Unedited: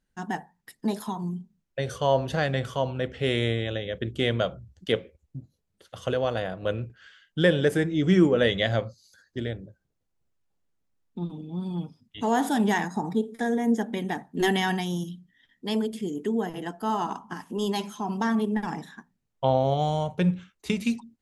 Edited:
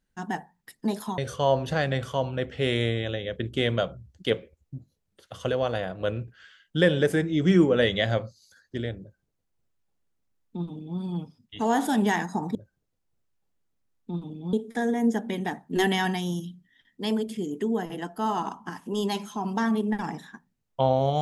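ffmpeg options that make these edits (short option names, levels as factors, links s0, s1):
-filter_complex "[0:a]asplit=4[s0][s1][s2][s3];[s0]atrim=end=1.182[s4];[s1]atrim=start=1.798:end=13.172[s5];[s2]atrim=start=9.628:end=11.612[s6];[s3]atrim=start=13.168[s7];[s4][s5]acrossfade=d=0.004:c1=hsin:c2=hsin[s8];[s8][s6]acrossfade=d=0.004:c1=hsin:c2=hsin[s9];[s9][s7]acrossfade=d=0.004:c1=hsin:c2=hsin"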